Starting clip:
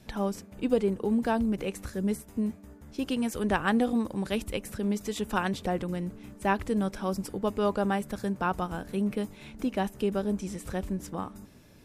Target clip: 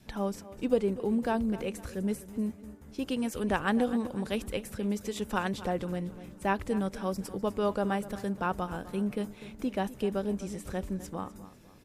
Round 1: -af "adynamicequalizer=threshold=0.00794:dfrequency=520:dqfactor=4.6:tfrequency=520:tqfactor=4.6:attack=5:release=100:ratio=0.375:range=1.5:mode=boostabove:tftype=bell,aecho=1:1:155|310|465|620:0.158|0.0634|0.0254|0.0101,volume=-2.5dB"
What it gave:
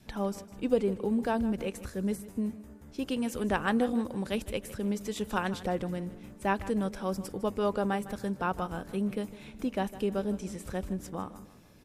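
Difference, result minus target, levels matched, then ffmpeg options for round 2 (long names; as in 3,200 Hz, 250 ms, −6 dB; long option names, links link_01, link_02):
echo 96 ms early
-af "adynamicequalizer=threshold=0.00794:dfrequency=520:dqfactor=4.6:tfrequency=520:tqfactor=4.6:attack=5:release=100:ratio=0.375:range=1.5:mode=boostabove:tftype=bell,aecho=1:1:251|502|753|1004:0.158|0.0634|0.0254|0.0101,volume=-2.5dB"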